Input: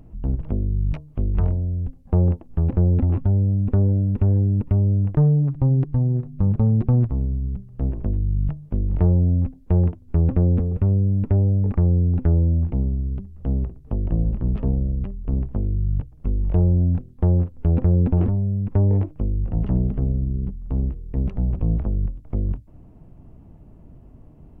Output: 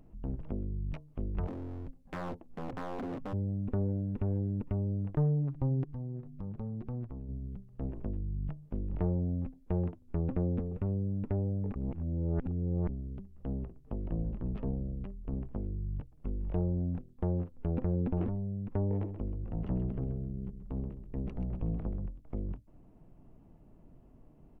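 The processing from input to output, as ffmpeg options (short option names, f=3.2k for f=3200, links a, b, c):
-filter_complex "[0:a]asplit=3[a][b][c];[a]afade=t=out:st=1.46:d=0.02[d];[b]aeval=exprs='0.0708*(abs(mod(val(0)/0.0708+3,4)-2)-1)':c=same,afade=t=in:st=1.46:d=0.02,afade=t=out:st=3.32:d=0.02[e];[c]afade=t=in:st=3.32:d=0.02[f];[d][e][f]amix=inputs=3:normalize=0,asplit=3[g][h][i];[g]afade=t=out:st=5.83:d=0.02[j];[h]acompressor=threshold=-29dB:ratio=2:attack=3.2:release=140:knee=1:detection=peak,afade=t=in:st=5.83:d=0.02,afade=t=out:st=7.28:d=0.02[k];[i]afade=t=in:st=7.28:d=0.02[l];[j][k][l]amix=inputs=3:normalize=0,asplit=3[m][n][o];[m]afade=t=out:st=19.01:d=0.02[p];[n]aecho=1:1:131|262|393:0.316|0.0791|0.0198,afade=t=in:st=19.01:d=0.02,afade=t=out:st=22.04:d=0.02[q];[o]afade=t=in:st=22.04:d=0.02[r];[p][q][r]amix=inputs=3:normalize=0,asplit=3[s][t][u];[s]atrim=end=11.762[v];[t]atrim=start=11.758:end=12.892,asetpts=PTS-STARTPTS,areverse[w];[u]atrim=start=12.888[x];[v][w]acrossfade=d=0.004:c1=hsin:c2=hsin[y];[y][x]acrossfade=d=0.004:c1=hsin:c2=hsin,equalizer=f=75:w=0.74:g=-8.5,volume=-8dB"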